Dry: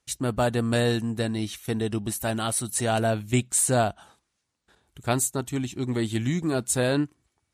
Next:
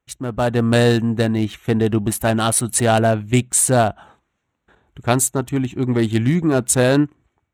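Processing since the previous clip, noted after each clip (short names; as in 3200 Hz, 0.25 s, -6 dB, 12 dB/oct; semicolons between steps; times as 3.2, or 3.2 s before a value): Wiener smoothing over 9 samples; AGC gain up to 10.5 dB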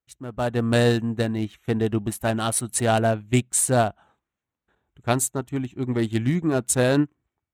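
upward expander 1.5:1, over -32 dBFS; gain -3.5 dB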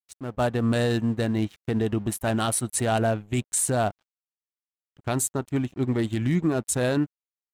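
crossover distortion -51 dBFS; limiter -16.5 dBFS, peak gain reduction 10 dB; gain +2 dB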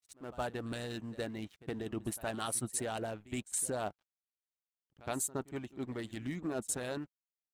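harmonic-percussive split harmonic -11 dB; reverse echo 68 ms -19 dB; gain -8.5 dB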